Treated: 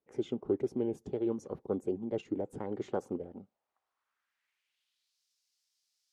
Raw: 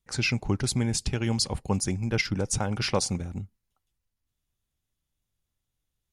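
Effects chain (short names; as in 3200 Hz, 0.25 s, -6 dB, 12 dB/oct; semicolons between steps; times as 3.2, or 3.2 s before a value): formant shift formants +5 st; requantised 12-bit, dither triangular; band-pass sweep 390 Hz -> 5100 Hz, 3.15–5.23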